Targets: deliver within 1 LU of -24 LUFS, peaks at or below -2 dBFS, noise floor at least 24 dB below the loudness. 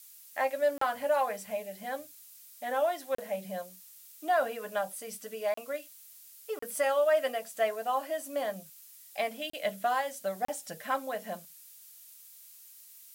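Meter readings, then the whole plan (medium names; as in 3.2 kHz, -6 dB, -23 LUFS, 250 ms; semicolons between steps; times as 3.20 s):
dropouts 6; longest dropout 34 ms; noise floor -53 dBFS; noise floor target -57 dBFS; loudness -32.5 LUFS; peak level -17.0 dBFS; loudness target -24.0 LUFS
-> interpolate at 0.78/3.15/5.54/6.59/9.50/10.45 s, 34 ms; noise print and reduce 6 dB; trim +8.5 dB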